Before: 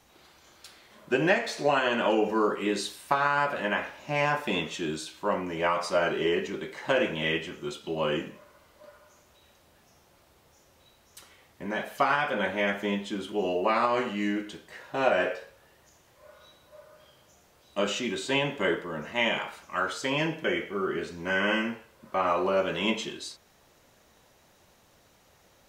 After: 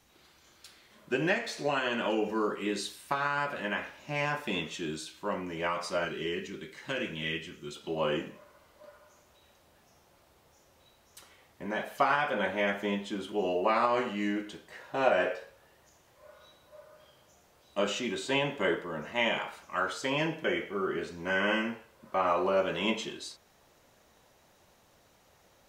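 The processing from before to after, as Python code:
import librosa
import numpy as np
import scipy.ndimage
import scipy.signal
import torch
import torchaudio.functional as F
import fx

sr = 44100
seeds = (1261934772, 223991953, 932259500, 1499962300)

y = fx.peak_eq(x, sr, hz=740.0, db=fx.steps((0.0, -4.0), (6.05, -12.5), (7.76, 2.0)), octaves=1.6)
y = F.gain(torch.from_numpy(y), -3.0).numpy()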